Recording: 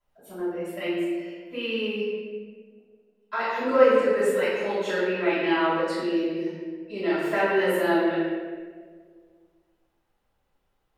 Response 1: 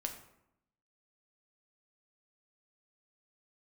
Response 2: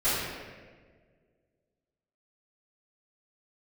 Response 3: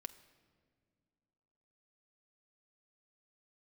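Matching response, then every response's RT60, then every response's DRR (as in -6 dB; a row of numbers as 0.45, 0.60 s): 2; 0.80 s, 1.6 s, not exponential; 3.5, -16.5, 10.5 dB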